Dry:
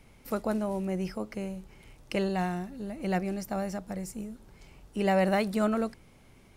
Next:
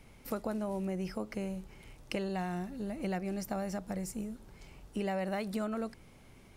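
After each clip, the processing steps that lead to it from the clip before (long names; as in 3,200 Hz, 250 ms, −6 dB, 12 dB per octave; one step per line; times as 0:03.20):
downward compressor 6 to 1, threshold −32 dBFS, peak gain reduction 10.5 dB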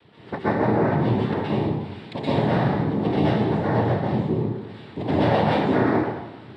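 low-pass filter 2,300 Hz 24 dB per octave
cochlear-implant simulation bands 6
dense smooth reverb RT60 1 s, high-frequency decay 0.8×, pre-delay 110 ms, DRR −9.5 dB
level +5.5 dB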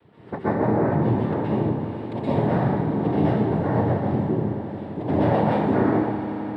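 parametric band 4,200 Hz −12 dB 2.1 octaves
echo that builds up and dies away 87 ms, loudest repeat 5, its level −17 dB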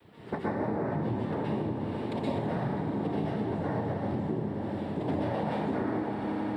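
high-shelf EQ 3,500 Hz +11.5 dB
downward compressor 6 to 1, threshold −27 dBFS, peak gain reduction 12 dB
flanger 1.7 Hz, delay 3.1 ms, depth 1.9 ms, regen −74%
level +3.5 dB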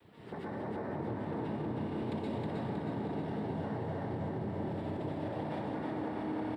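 brickwall limiter −28.5 dBFS, peak gain reduction 10 dB
repeating echo 316 ms, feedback 59%, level −3 dB
level −3.5 dB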